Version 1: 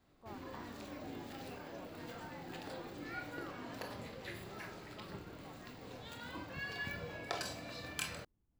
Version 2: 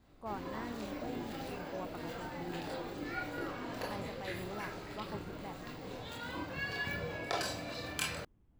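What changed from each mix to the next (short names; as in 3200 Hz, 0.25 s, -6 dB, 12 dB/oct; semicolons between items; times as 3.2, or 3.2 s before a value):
speech +11.5 dB; background: send +7.5 dB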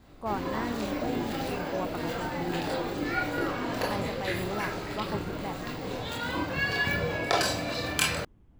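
speech +9.5 dB; background +10.0 dB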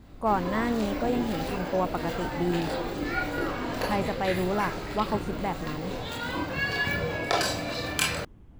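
speech +7.5 dB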